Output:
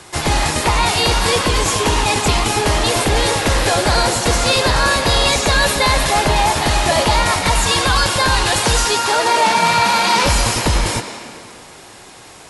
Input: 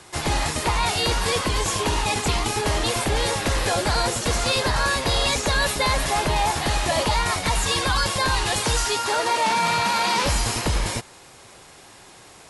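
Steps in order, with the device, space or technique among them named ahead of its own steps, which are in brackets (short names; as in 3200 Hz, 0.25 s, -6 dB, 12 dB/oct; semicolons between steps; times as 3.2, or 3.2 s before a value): filtered reverb send (on a send: HPF 200 Hz 24 dB/oct + LPF 8400 Hz + reverb RT60 2.3 s, pre-delay 0.101 s, DRR 7.5 dB); on the sum: gain +6.5 dB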